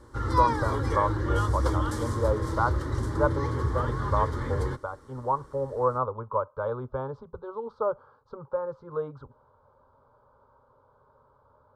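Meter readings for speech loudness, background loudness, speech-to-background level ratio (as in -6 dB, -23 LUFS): -31.5 LUFS, -29.0 LUFS, -2.5 dB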